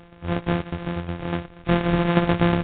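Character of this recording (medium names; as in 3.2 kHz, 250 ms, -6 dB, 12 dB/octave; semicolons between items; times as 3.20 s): a buzz of ramps at a fixed pitch in blocks of 256 samples; tremolo saw down 8.3 Hz, depth 55%; Nellymoser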